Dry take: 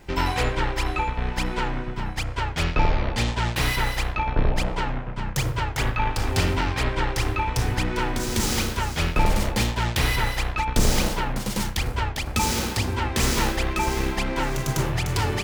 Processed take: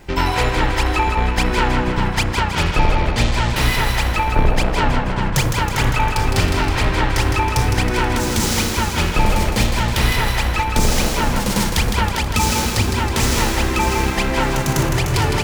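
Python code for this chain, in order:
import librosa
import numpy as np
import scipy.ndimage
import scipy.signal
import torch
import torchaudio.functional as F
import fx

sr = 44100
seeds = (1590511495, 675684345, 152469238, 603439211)

p1 = fx.rider(x, sr, range_db=10, speed_s=0.5)
p2 = p1 + fx.echo_split(p1, sr, split_hz=320.0, low_ms=439, high_ms=160, feedback_pct=52, wet_db=-6, dry=0)
y = p2 * 10.0 ** (5.5 / 20.0)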